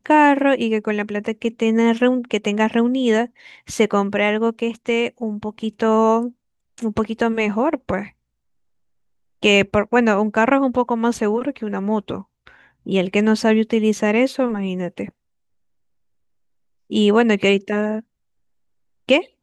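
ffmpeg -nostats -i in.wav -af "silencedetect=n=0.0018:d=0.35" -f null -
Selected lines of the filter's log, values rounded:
silence_start: 6.33
silence_end: 6.78 | silence_duration: 0.45
silence_start: 8.13
silence_end: 9.42 | silence_duration: 1.29
silence_start: 15.11
silence_end: 16.90 | silence_duration: 1.79
silence_start: 18.03
silence_end: 19.08 | silence_duration: 1.04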